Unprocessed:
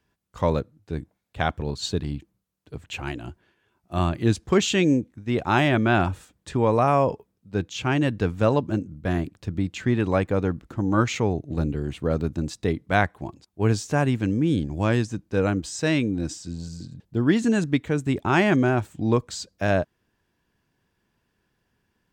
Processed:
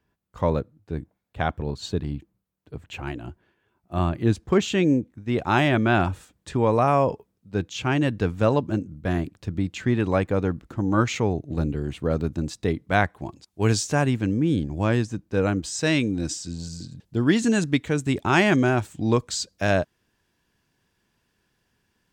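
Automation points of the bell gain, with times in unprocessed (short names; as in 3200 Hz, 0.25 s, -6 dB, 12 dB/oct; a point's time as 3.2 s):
bell 6800 Hz 2.8 oct
4.94 s -6.5 dB
5.46 s 0 dB
13.15 s 0 dB
13.68 s +10 dB
14.27 s -2 dB
15.26 s -2 dB
16.03 s +6 dB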